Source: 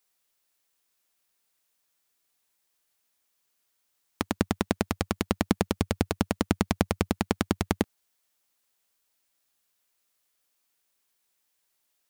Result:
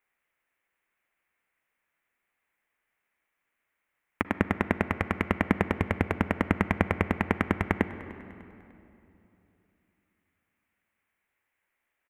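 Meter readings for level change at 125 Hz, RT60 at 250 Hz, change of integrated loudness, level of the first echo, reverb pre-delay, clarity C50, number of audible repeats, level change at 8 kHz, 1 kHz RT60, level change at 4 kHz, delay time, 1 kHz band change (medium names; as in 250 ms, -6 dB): +0.5 dB, 3.3 s, +0.5 dB, -20.5 dB, 38 ms, 11.5 dB, 2, under -15 dB, 2.8 s, -8.5 dB, 299 ms, +2.0 dB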